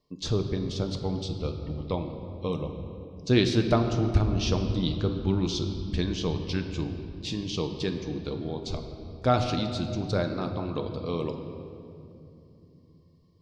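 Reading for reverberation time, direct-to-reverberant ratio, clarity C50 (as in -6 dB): 2.8 s, 5.0 dB, 7.0 dB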